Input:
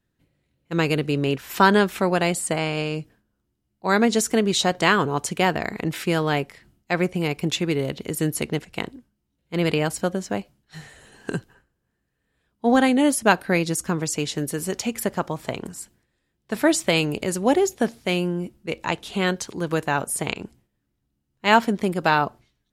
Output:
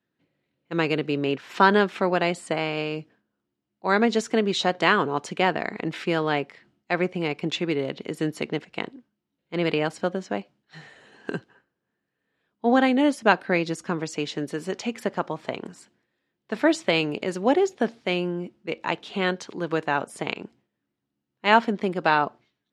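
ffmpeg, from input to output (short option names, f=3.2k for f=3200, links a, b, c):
-af "highpass=200,lowpass=4.1k,volume=-1dB"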